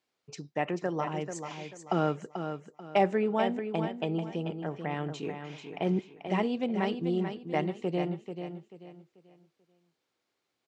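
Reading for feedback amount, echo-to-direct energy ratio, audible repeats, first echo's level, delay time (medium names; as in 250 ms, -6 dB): 31%, -7.5 dB, 3, -8.0 dB, 438 ms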